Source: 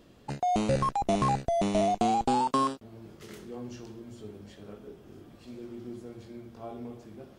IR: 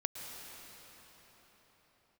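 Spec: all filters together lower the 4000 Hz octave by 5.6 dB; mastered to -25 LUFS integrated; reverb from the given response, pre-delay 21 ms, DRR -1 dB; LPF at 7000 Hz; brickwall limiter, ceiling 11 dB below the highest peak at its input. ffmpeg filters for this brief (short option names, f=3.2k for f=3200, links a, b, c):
-filter_complex "[0:a]lowpass=7k,equalizer=f=4k:t=o:g=-7,alimiter=level_in=1.5dB:limit=-24dB:level=0:latency=1,volume=-1.5dB,asplit=2[a][b];[1:a]atrim=start_sample=2205,adelay=21[c];[b][c]afir=irnorm=-1:irlink=0,volume=-0.5dB[d];[a][d]amix=inputs=2:normalize=0,volume=7dB"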